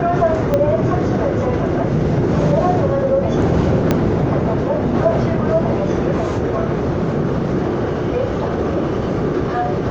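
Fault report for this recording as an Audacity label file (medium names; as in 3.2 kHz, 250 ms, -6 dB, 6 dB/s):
0.540000	0.540000	pop -6 dBFS
3.910000	3.910000	pop -2 dBFS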